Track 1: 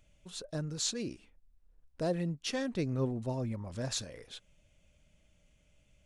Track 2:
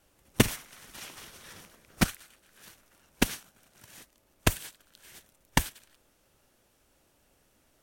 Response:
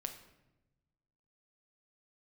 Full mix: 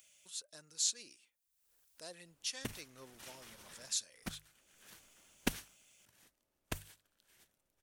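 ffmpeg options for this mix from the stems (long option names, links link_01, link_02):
-filter_complex "[0:a]aderivative,acompressor=mode=upward:threshold=-58dB:ratio=2.5,volume=2.5dB,asplit=2[link_01][link_02];[1:a]bandreject=frequency=50:width_type=h:width=6,bandreject=frequency=100:width_type=h:width=6,bandreject=frequency=150:width_type=h:width=6,adelay=2250,volume=-6dB,afade=type=out:start_time=5.14:duration=0.77:silence=0.316228[link_03];[link_02]apad=whole_len=444232[link_04];[link_03][link_04]sidechaincompress=threshold=-56dB:ratio=5:attack=34:release=519[link_05];[link_01][link_05]amix=inputs=2:normalize=0"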